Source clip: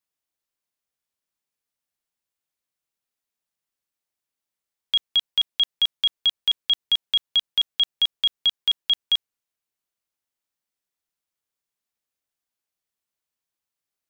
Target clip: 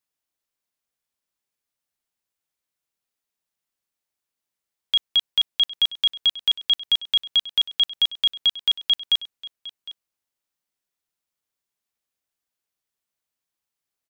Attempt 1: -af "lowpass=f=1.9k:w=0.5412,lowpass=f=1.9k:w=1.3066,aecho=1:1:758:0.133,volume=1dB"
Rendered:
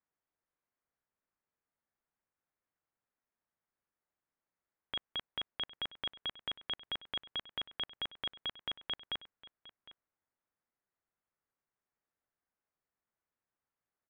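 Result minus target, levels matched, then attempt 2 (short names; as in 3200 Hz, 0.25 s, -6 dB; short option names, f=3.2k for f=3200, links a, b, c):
2000 Hz band +13.5 dB
-af "aecho=1:1:758:0.133,volume=1dB"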